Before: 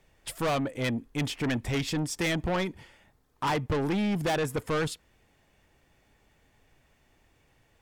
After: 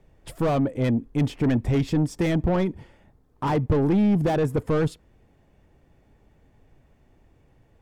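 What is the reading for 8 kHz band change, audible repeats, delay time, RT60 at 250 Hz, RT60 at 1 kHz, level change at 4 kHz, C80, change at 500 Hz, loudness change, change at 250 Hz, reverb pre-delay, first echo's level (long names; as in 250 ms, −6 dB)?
can't be measured, no echo audible, no echo audible, no reverb audible, no reverb audible, −5.5 dB, no reverb audible, +5.5 dB, +6.0 dB, +8.0 dB, no reverb audible, no echo audible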